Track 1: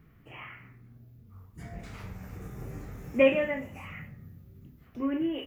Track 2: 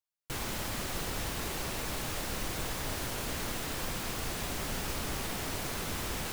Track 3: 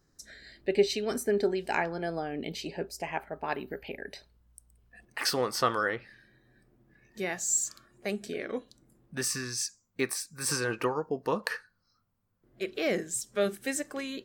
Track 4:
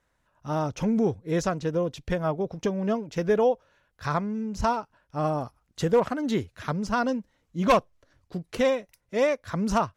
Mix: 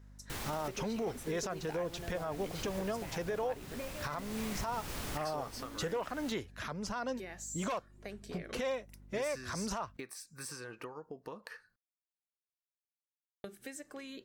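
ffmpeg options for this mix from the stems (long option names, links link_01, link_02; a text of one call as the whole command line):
ffmpeg -i stem1.wav -i stem2.wav -i stem3.wav -i stem4.wav -filter_complex "[0:a]adelay=600,volume=-5.5dB[link_01];[1:a]volume=-4.5dB[link_02];[2:a]volume=-5.5dB,asplit=3[link_03][link_04][link_05];[link_03]atrim=end=11.76,asetpts=PTS-STARTPTS,afade=type=out:start_time=11.756:duration=0.004:curve=hsin[link_06];[link_04]atrim=start=11.76:end=13.44,asetpts=PTS-STARTPTS,volume=0[link_07];[link_05]atrim=start=13.44,asetpts=PTS-STARTPTS,afade=type=in:duration=0.004:curve=hsin[link_08];[link_06][link_07][link_08]concat=n=3:v=0:a=1,asplit=2[link_09][link_10];[3:a]acrossover=split=470[link_11][link_12];[link_11]acompressor=threshold=-41dB:ratio=2.5[link_13];[link_13][link_12]amix=inputs=2:normalize=0,volume=0dB[link_14];[link_10]apad=whole_len=278797[link_15];[link_02][link_15]sidechaincompress=threshold=-40dB:ratio=4:attack=5.8:release=1040[link_16];[link_01][link_09]amix=inputs=2:normalize=0,acompressor=threshold=-42dB:ratio=8,volume=0dB[link_17];[link_16][link_14]amix=inputs=2:normalize=0,aeval=exprs='val(0)+0.002*(sin(2*PI*50*n/s)+sin(2*PI*2*50*n/s)/2+sin(2*PI*3*50*n/s)/3+sin(2*PI*4*50*n/s)/4+sin(2*PI*5*50*n/s)/5)':channel_layout=same,acompressor=threshold=-33dB:ratio=2.5,volume=0dB[link_18];[link_17][link_18]amix=inputs=2:normalize=0,alimiter=level_in=3.5dB:limit=-24dB:level=0:latency=1:release=11,volume=-3.5dB" out.wav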